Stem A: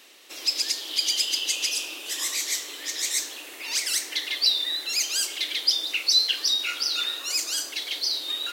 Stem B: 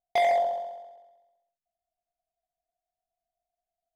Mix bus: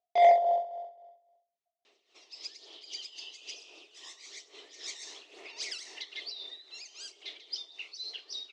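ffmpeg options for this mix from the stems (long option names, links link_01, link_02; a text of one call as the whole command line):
ffmpeg -i stem1.wav -i stem2.wav -filter_complex "[0:a]equalizer=frequency=540:width_type=o:width=0.28:gain=-2.5,aphaser=in_gain=1:out_gain=1:delay=1.1:decay=0.35:speed=1.1:type=sinusoidal,adelay=1850,volume=-8.5dB,afade=type=in:start_time=4.5:duration=0.53:silence=0.446684,afade=type=out:start_time=5.86:duration=0.66:silence=0.421697[link_01];[1:a]volume=-0.5dB[link_02];[link_01][link_02]amix=inputs=2:normalize=0,tremolo=f=3.7:d=0.68,highpass=130,equalizer=frequency=170:width_type=q:width=4:gain=-8,equalizer=frequency=290:width_type=q:width=4:gain=-5,equalizer=frequency=410:width_type=q:width=4:gain=9,equalizer=frequency=670:width_type=q:width=4:gain=6,equalizer=frequency=1600:width_type=q:width=4:gain=-7,lowpass=frequency=6100:width=0.5412,lowpass=frequency=6100:width=1.3066" out.wav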